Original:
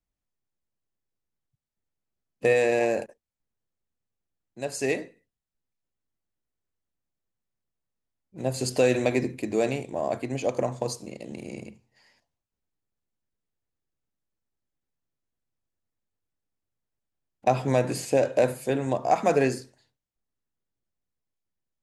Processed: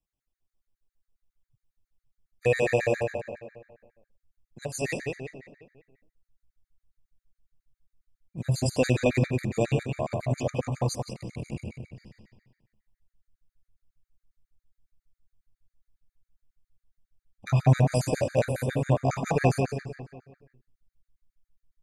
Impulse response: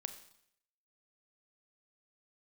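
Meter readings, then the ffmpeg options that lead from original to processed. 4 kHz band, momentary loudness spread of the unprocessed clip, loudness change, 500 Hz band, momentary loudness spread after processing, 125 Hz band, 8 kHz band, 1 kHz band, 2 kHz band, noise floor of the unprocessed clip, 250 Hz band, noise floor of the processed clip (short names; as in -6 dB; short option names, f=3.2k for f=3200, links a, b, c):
-1.5 dB, 15 LU, -1.5 dB, -3.5 dB, 17 LU, +8.5 dB, -1.5 dB, -4.5 dB, -1.0 dB, under -85 dBFS, -0.5 dB, under -85 dBFS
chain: -filter_complex "[0:a]asplit=2[a][b];[b]adelay=176,lowpass=f=4.1k:p=1,volume=-4dB,asplit=2[c][d];[d]adelay=176,lowpass=f=4.1k:p=1,volume=0.48,asplit=2[e][f];[f]adelay=176,lowpass=f=4.1k:p=1,volume=0.48,asplit=2[g][h];[h]adelay=176,lowpass=f=4.1k:p=1,volume=0.48,asplit=2[i][j];[j]adelay=176,lowpass=f=4.1k:p=1,volume=0.48,asplit=2[k][l];[l]adelay=176,lowpass=f=4.1k:p=1,volume=0.48[m];[a][c][e][g][i][k][m]amix=inputs=7:normalize=0,asubboost=boost=7:cutoff=120,afftfilt=real='re*gt(sin(2*PI*7.3*pts/sr)*(1-2*mod(floor(b*sr/1024/1200),2)),0)':imag='im*gt(sin(2*PI*7.3*pts/sr)*(1-2*mod(floor(b*sr/1024/1200),2)),0)':win_size=1024:overlap=0.75,volume=1dB"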